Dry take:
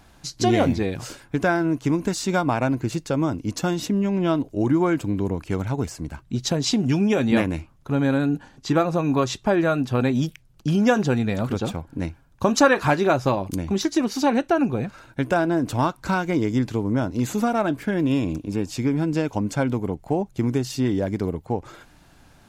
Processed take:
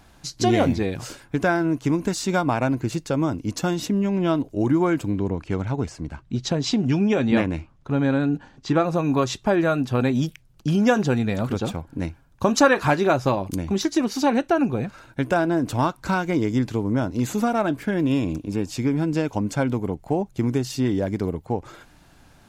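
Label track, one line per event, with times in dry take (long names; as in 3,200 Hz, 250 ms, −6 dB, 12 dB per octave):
5.160000	8.840000	high-frequency loss of the air 67 metres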